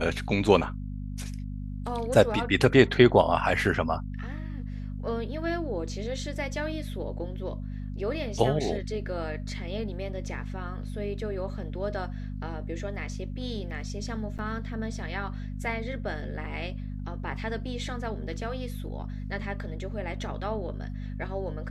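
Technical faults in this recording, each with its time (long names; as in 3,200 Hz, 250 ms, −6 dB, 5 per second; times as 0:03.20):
mains hum 50 Hz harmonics 5 −35 dBFS
0:14.38–0:14.39: drop-out 8.4 ms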